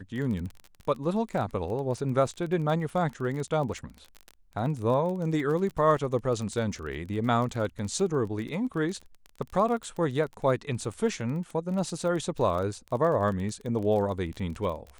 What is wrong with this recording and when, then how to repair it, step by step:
crackle 28 per s -33 dBFS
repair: de-click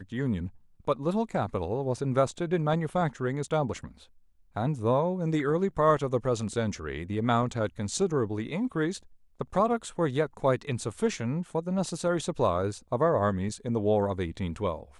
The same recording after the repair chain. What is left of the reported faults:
nothing left

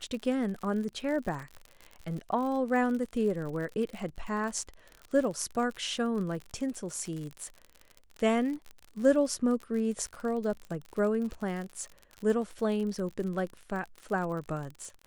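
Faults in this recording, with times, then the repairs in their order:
crackle 55 per s -36 dBFS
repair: de-click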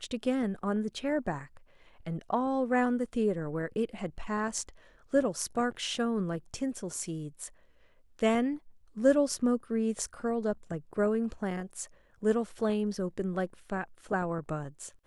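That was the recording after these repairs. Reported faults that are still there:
nothing left

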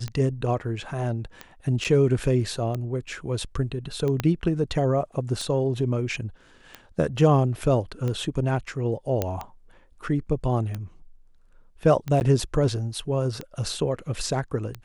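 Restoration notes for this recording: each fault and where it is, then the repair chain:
tick 45 rpm -18 dBFS
1.84–1.85 s: dropout 7.1 ms
4.20 s: pop -11 dBFS
9.22 s: pop -10 dBFS
12.20–12.21 s: dropout 9.8 ms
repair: de-click; interpolate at 1.84 s, 7.1 ms; interpolate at 12.20 s, 9.8 ms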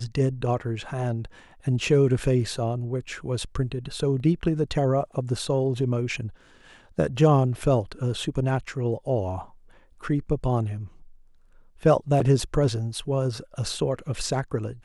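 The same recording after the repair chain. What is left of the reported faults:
4.20 s: pop

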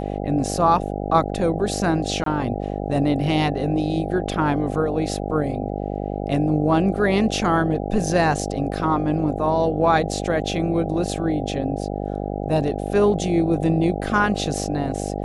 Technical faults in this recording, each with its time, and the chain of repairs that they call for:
buzz 50 Hz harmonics 16 -27 dBFS
2.24–2.26 s: dropout 23 ms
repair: de-hum 50 Hz, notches 16; interpolate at 2.24 s, 23 ms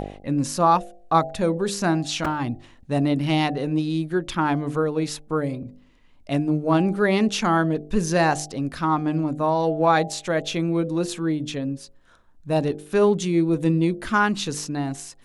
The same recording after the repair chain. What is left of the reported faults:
nothing left

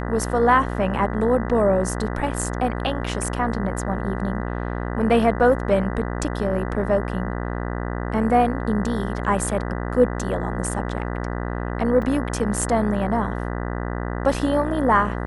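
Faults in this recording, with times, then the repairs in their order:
buzz 60 Hz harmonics 33 -27 dBFS
12.02 s: dropout 3.5 ms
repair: de-hum 60 Hz, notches 33; interpolate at 12.02 s, 3.5 ms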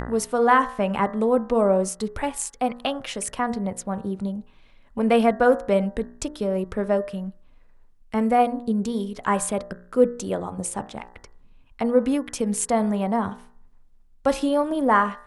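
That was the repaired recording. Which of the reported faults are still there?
nothing left

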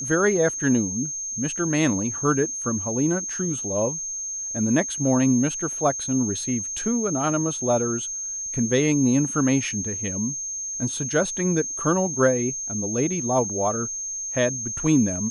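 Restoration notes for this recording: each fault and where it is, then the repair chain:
whine 6.4 kHz -28 dBFS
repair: band-stop 6.4 kHz, Q 30

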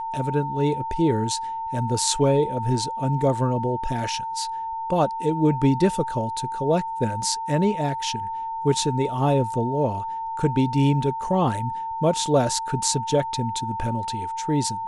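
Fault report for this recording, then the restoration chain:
whine 900 Hz -27 dBFS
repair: band-stop 900 Hz, Q 30

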